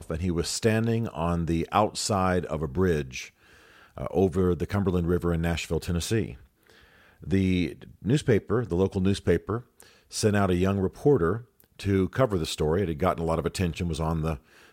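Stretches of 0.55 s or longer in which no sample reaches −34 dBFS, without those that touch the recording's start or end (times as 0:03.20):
0:03.27–0:03.98
0:06.33–0:07.24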